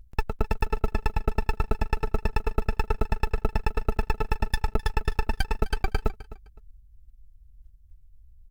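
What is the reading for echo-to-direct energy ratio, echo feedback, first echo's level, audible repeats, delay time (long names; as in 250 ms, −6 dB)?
−17.0 dB, 23%, −17.0 dB, 2, 257 ms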